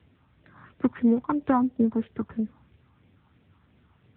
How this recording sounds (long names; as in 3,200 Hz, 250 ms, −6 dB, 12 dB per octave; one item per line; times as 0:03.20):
a buzz of ramps at a fixed pitch in blocks of 8 samples
phaser sweep stages 4, 3 Hz, lowest notch 490–1,100 Hz
a quantiser's noise floor 12 bits, dither none
AMR narrowband